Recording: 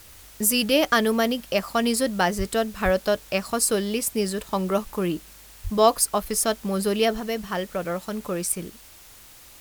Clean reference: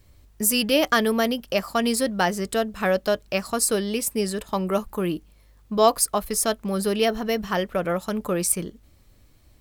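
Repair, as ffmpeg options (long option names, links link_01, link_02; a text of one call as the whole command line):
ffmpeg -i in.wav -filter_complex "[0:a]asplit=3[link_01][link_02][link_03];[link_01]afade=type=out:start_time=2.37:duration=0.02[link_04];[link_02]highpass=frequency=140:width=0.5412,highpass=frequency=140:width=1.3066,afade=type=in:start_time=2.37:duration=0.02,afade=type=out:start_time=2.49:duration=0.02[link_05];[link_03]afade=type=in:start_time=2.49:duration=0.02[link_06];[link_04][link_05][link_06]amix=inputs=3:normalize=0,asplit=3[link_07][link_08][link_09];[link_07]afade=type=out:start_time=2.84:duration=0.02[link_10];[link_08]highpass=frequency=140:width=0.5412,highpass=frequency=140:width=1.3066,afade=type=in:start_time=2.84:duration=0.02,afade=type=out:start_time=2.96:duration=0.02[link_11];[link_09]afade=type=in:start_time=2.96:duration=0.02[link_12];[link_10][link_11][link_12]amix=inputs=3:normalize=0,asplit=3[link_13][link_14][link_15];[link_13]afade=type=out:start_time=5.63:duration=0.02[link_16];[link_14]highpass=frequency=140:width=0.5412,highpass=frequency=140:width=1.3066,afade=type=in:start_time=5.63:duration=0.02,afade=type=out:start_time=5.75:duration=0.02[link_17];[link_15]afade=type=in:start_time=5.75:duration=0.02[link_18];[link_16][link_17][link_18]amix=inputs=3:normalize=0,afwtdn=0.004,asetnsamples=nb_out_samples=441:pad=0,asendcmd='7.2 volume volume 3.5dB',volume=0dB" out.wav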